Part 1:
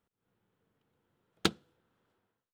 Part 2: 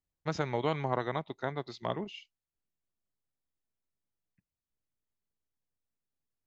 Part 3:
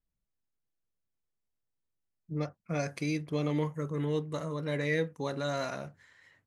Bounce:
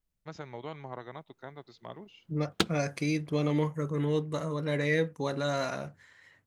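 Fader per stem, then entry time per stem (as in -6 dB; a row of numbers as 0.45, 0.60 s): +1.5, -10.0, +2.5 dB; 1.15, 0.00, 0.00 s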